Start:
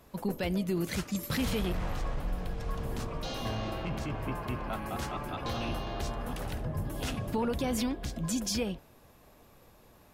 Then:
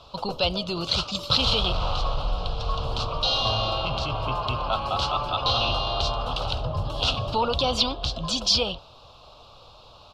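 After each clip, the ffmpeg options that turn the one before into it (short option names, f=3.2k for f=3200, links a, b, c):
-af "firequalizer=gain_entry='entry(120,0);entry(190,-10);entry(350,-8);entry(550,3);entry(1300,7);entry(1800,-21);entry(2800,10);entry(4200,14);entry(6500,-5);entry(12000,-24)':delay=0.05:min_phase=1,volume=7dB"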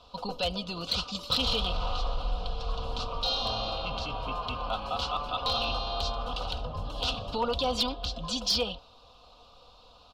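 -af "aecho=1:1:4.1:0.6,aeval=exprs='clip(val(0),-1,0.211)':c=same,volume=-7dB"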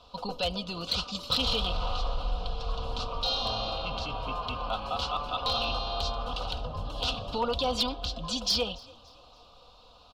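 -filter_complex "[0:a]asplit=4[a][b][c][d];[b]adelay=287,afreqshift=34,volume=-24dB[e];[c]adelay=574,afreqshift=68,volume=-31.7dB[f];[d]adelay=861,afreqshift=102,volume=-39.5dB[g];[a][e][f][g]amix=inputs=4:normalize=0"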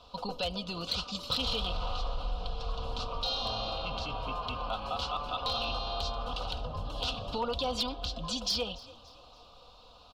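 -af "acompressor=threshold=-35dB:ratio=1.5"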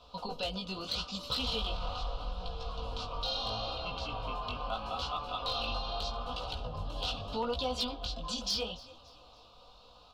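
-af "flanger=delay=15.5:depth=5.8:speed=0.78,volume=1dB"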